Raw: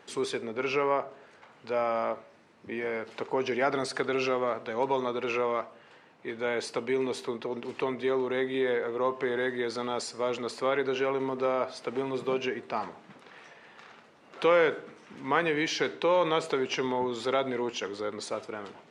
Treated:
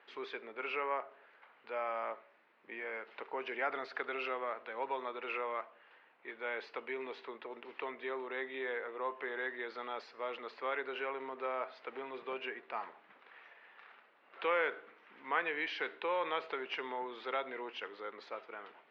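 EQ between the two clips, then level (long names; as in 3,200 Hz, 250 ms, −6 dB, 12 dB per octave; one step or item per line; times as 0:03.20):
band-pass filter 350–2,300 Hz
high-frequency loss of the air 270 metres
tilt shelving filter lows −9.5 dB, about 1,400 Hz
−3.0 dB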